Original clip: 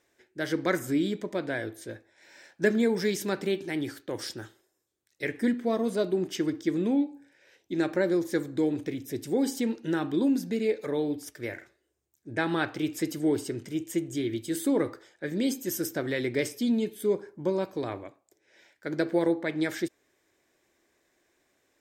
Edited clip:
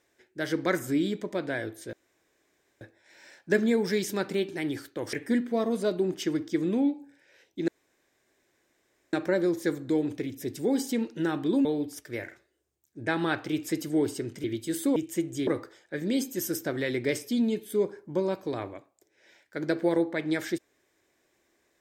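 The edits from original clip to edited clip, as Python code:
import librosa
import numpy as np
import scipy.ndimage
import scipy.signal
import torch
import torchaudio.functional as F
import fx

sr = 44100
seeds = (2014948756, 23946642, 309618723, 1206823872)

y = fx.edit(x, sr, fx.insert_room_tone(at_s=1.93, length_s=0.88),
    fx.cut(start_s=4.25, length_s=1.01),
    fx.insert_room_tone(at_s=7.81, length_s=1.45),
    fx.cut(start_s=10.33, length_s=0.62),
    fx.move(start_s=13.74, length_s=0.51, to_s=14.77), tone=tone)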